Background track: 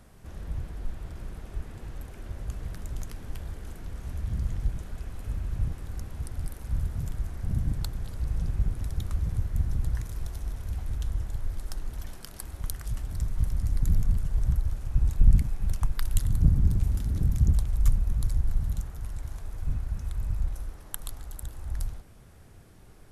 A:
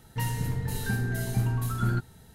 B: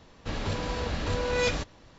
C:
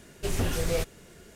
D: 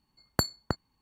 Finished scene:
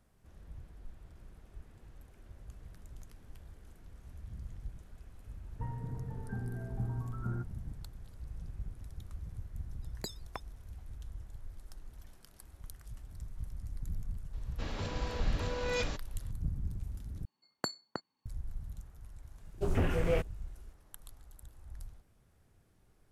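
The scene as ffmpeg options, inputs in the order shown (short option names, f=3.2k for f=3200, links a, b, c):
-filter_complex "[4:a]asplit=2[a][b];[0:a]volume=-15dB[c];[1:a]lowpass=f=1.3k:w=0.5412,lowpass=f=1.3k:w=1.3066[d];[a]aeval=exprs='val(0)*sin(2*PI*490*n/s+490*0.85/4.2*sin(2*PI*4.2*n/s))':c=same[e];[b]highpass=230,lowpass=7.4k[f];[3:a]afwtdn=0.0112[g];[c]asplit=2[h][i];[h]atrim=end=17.254[j];[f]atrim=end=1.01,asetpts=PTS-STARTPTS,volume=-7dB[k];[i]atrim=start=18.256[l];[d]atrim=end=2.34,asetpts=PTS-STARTPTS,volume=-10dB,afade=t=in:d=0.004:c=hsin,afade=t=out:st=2.336:d=0.004:c=hsin,adelay=5430[m];[e]atrim=end=1.01,asetpts=PTS-STARTPTS,volume=-10dB,afade=t=in:d=0.004:c=hsin,afade=t=out:st=1.006:d=0.004:c=hsin,adelay=9650[n];[2:a]atrim=end=1.98,asetpts=PTS-STARTPTS,volume=-7.5dB,afade=t=in:d=0.004:c=hsin,afade=t=out:st=1.976:d=0.004:c=hsin,adelay=14330[o];[g]atrim=end=1.35,asetpts=PTS-STARTPTS,volume=-1.5dB,afade=t=in:d=0.004:c=hsin,afade=t=out:st=1.346:d=0.004:c=hsin,adelay=19380[p];[j][k]acrossfade=d=0.004:c1=hsin:c2=hsin[q];[q][l]acrossfade=d=0.004:c1=hsin:c2=hsin[r];[r][m][n][o][p]amix=inputs=5:normalize=0"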